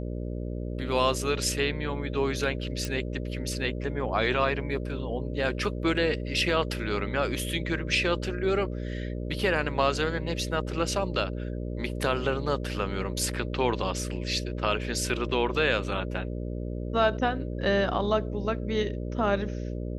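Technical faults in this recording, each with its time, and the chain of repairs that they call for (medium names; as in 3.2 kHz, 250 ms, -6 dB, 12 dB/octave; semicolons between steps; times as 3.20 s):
buzz 60 Hz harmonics 10 -33 dBFS
2.85 s: pop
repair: de-click; de-hum 60 Hz, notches 10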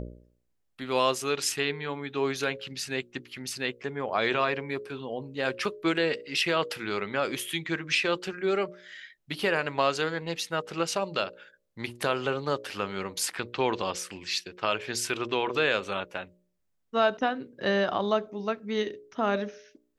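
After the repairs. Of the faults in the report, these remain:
nothing left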